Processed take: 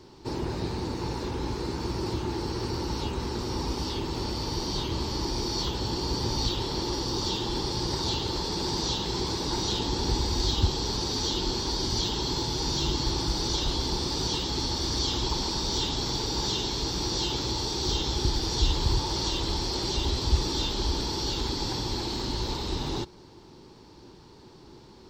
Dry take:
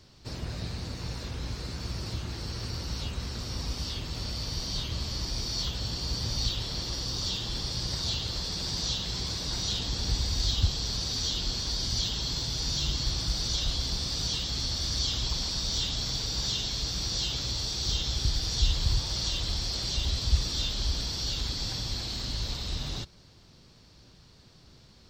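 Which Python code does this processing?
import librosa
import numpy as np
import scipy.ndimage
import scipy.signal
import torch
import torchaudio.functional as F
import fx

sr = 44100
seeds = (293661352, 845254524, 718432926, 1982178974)

y = fx.small_body(x, sr, hz=(360.0, 870.0), ring_ms=20, db=16)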